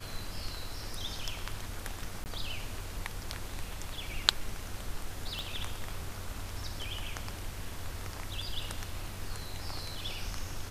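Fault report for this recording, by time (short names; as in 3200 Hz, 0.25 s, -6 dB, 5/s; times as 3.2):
2.24–2.26 gap 19 ms
5.39 pop -23 dBFS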